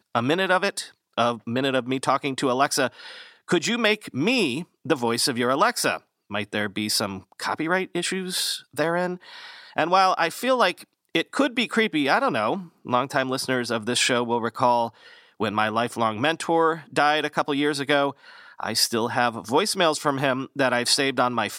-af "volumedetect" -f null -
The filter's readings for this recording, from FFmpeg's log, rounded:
mean_volume: -24.1 dB
max_volume: -4.7 dB